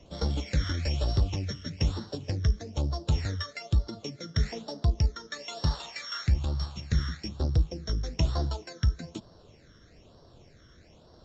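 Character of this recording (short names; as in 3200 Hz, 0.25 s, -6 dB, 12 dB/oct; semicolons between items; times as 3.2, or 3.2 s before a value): a buzz of ramps at a fixed pitch in blocks of 8 samples; phasing stages 12, 1.1 Hz, lowest notch 780–2400 Hz; AAC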